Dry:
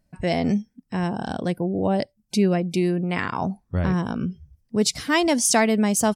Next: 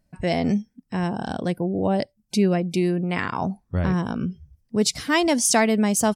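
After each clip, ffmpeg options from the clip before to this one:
-af anull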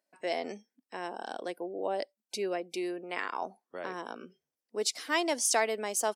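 -af "highpass=f=360:w=0.5412,highpass=f=360:w=1.3066,volume=0.422"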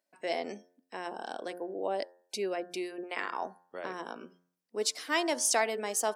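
-af "bandreject=f=88.62:t=h:w=4,bandreject=f=177.24:t=h:w=4,bandreject=f=265.86:t=h:w=4,bandreject=f=354.48:t=h:w=4,bandreject=f=443.1:t=h:w=4,bandreject=f=531.72:t=h:w=4,bandreject=f=620.34:t=h:w=4,bandreject=f=708.96:t=h:w=4,bandreject=f=797.58:t=h:w=4,bandreject=f=886.2:t=h:w=4,bandreject=f=974.82:t=h:w=4,bandreject=f=1063.44:t=h:w=4,bandreject=f=1152.06:t=h:w=4,bandreject=f=1240.68:t=h:w=4,bandreject=f=1329.3:t=h:w=4,bandreject=f=1417.92:t=h:w=4,bandreject=f=1506.54:t=h:w=4,bandreject=f=1595.16:t=h:w=4,bandreject=f=1683.78:t=h:w=4,bandreject=f=1772.4:t=h:w=4,bandreject=f=1861.02:t=h:w=4"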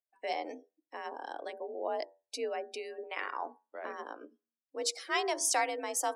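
-af "bandreject=f=60:t=h:w=6,bandreject=f=120:t=h:w=6,bandreject=f=180:t=h:w=6,bandreject=f=240:t=h:w=6,bandreject=f=300:t=h:w=6,bandreject=f=360:t=h:w=6,bandreject=f=420:t=h:w=6,afftdn=nr=18:nf=-49,afreqshift=53,volume=0.794"

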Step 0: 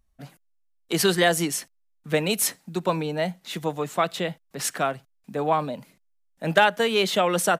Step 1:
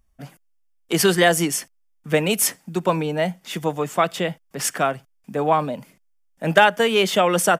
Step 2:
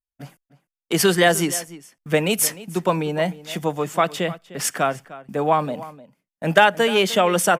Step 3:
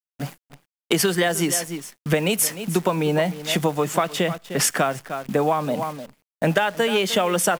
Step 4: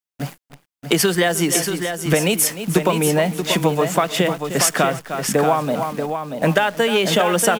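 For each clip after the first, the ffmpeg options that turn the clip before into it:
-af "bandreject=f=4000:w=5.9,volume=1.58"
-filter_complex "[0:a]agate=range=0.0224:threshold=0.01:ratio=3:detection=peak,asplit=2[s0][s1];[s1]adelay=303.2,volume=0.141,highshelf=f=4000:g=-6.82[s2];[s0][s2]amix=inputs=2:normalize=0"
-af "acompressor=threshold=0.0562:ratio=16,acrusher=bits=9:dc=4:mix=0:aa=0.000001,volume=2.66"
-af "aecho=1:1:634:0.447,volume=1.41"

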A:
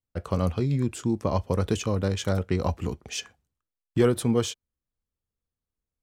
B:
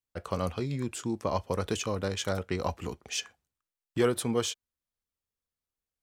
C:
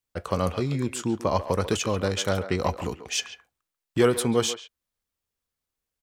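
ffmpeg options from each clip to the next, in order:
-af "lowshelf=f=350:g=-10"
-filter_complex "[0:a]asplit=2[s0][s1];[s1]adelay=140,highpass=300,lowpass=3400,asoftclip=type=hard:threshold=0.075,volume=0.282[s2];[s0][s2]amix=inputs=2:normalize=0,volume=1.88"

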